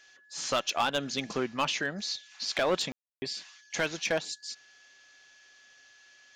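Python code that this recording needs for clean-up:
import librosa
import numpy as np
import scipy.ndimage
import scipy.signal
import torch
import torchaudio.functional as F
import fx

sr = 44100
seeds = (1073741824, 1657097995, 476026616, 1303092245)

y = fx.fix_declip(x, sr, threshold_db=-20.5)
y = fx.notch(y, sr, hz=1700.0, q=30.0)
y = fx.fix_ambience(y, sr, seeds[0], print_start_s=4.86, print_end_s=5.36, start_s=2.92, end_s=3.22)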